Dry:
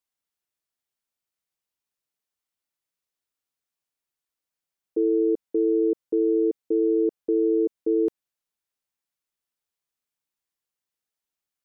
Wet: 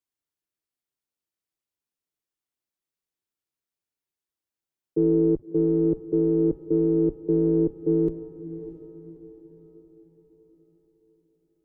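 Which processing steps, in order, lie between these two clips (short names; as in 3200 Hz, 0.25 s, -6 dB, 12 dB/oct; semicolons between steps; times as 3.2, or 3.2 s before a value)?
octaver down 1 oct, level +1 dB; bell 340 Hz +7.5 dB 0.77 oct; diffused feedback echo 0.622 s, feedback 45%, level -13 dB; gain -5 dB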